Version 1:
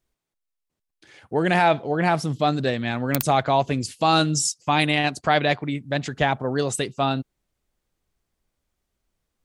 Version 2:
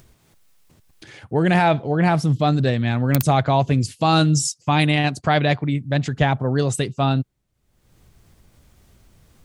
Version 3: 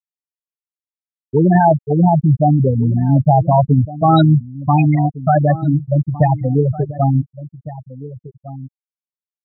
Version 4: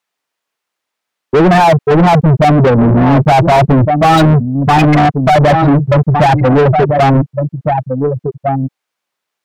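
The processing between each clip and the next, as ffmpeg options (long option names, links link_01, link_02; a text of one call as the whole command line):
ffmpeg -i in.wav -af "equalizer=frequency=110:width_type=o:width=1.8:gain=10.5,acompressor=mode=upward:threshold=-35dB:ratio=2.5" out.wav
ffmpeg -i in.wav -filter_complex "[0:a]afftfilt=real='re*gte(hypot(re,im),0.501)':imag='im*gte(hypot(re,im),0.501)':win_size=1024:overlap=0.75,asplit=2[link_01][link_02];[link_02]adelay=1458,volume=-16dB,highshelf=frequency=4000:gain=-32.8[link_03];[link_01][link_03]amix=inputs=2:normalize=0,volume=6.5dB" out.wav
ffmpeg -i in.wav -filter_complex "[0:a]asplit=2[link_01][link_02];[link_02]highpass=frequency=720:poles=1,volume=35dB,asoftclip=type=tanh:threshold=-1dB[link_03];[link_01][link_03]amix=inputs=2:normalize=0,lowpass=frequency=1700:poles=1,volume=-6dB" out.wav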